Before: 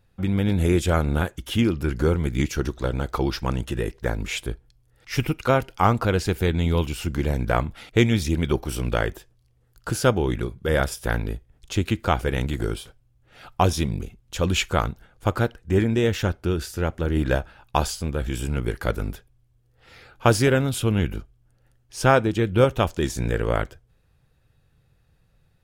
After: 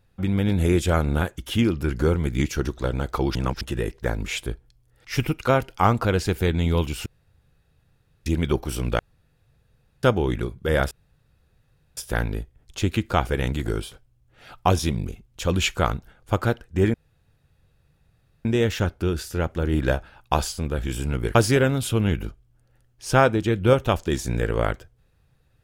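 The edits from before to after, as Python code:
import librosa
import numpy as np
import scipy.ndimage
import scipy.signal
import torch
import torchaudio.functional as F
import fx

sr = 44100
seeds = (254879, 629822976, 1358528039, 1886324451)

y = fx.edit(x, sr, fx.reverse_span(start_s=3.35, length_s=0.26),
    fx.room_tone_fill(start_s=7.06, length_s=1.2),
    fx.room_tone_fill(start_s=8.99, length_s=1.04),
    fx.insert_room_tone(at_s=10.91, length_s=1.06),
    fx.insert_room_tone(at_s=15.88, length_s=1.51),
    fx.cut(start_s=18.78, length_s=1.48), tone=tone)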